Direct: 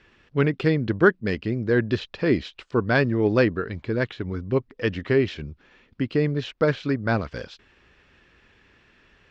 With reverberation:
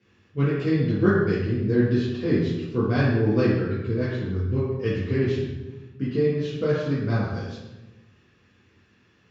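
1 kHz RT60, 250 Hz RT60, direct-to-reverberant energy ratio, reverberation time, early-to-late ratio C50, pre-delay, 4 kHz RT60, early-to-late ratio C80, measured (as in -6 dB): 1.0 s, 1.5 s, -9.5 dB, 1.1 s, 0.0 dB, 3 ms, 0.80 s, 2.5 dB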